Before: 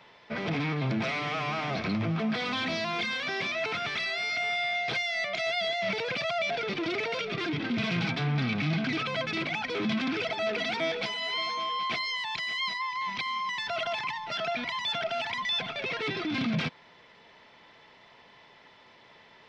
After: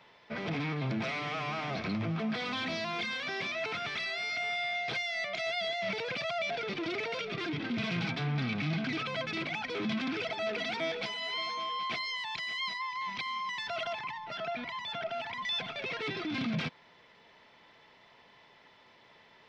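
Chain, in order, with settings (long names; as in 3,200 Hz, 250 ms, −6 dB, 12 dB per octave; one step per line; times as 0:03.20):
0:13.93–0:15.42: high-shelf EQ 3,500 Hz −10 dB
level −4 dB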